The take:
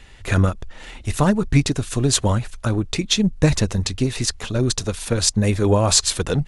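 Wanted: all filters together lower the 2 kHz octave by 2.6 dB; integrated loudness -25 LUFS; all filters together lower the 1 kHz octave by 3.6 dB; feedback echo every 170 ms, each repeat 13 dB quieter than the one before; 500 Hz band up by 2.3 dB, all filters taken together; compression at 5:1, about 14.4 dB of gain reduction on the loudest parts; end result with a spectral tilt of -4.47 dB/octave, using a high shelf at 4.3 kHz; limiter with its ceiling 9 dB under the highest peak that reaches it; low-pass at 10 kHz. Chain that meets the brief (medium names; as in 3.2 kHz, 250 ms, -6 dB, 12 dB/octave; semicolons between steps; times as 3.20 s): low-pass 10 kHz; peaking EQ 500 Hz +4 dB; peaking EQ 1 kHz -5.5 dB; peaking EQ 2 kHz -4 dB; treble shelf 4.3 kHz +8 dB; compression 5:1, threshold -26 dBFS; peak limiter -21.5 dBFS; feedback delay 170 ms, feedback 22%, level -13 dB; trim +7 dB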